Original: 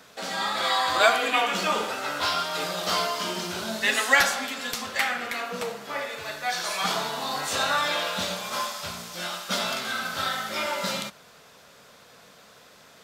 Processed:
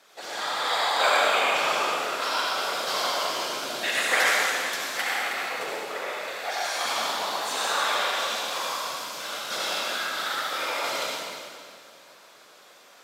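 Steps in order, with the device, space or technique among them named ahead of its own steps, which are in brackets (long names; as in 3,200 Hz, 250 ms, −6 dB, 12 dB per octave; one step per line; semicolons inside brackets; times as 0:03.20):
whispering ghost (random phases in short frames; high-pass filter 400 Hz 12 dB per octave; convolution reverb RT60 2.3 s, pre-delay 60 ms, DRR −4.5 dB)
level −5 dB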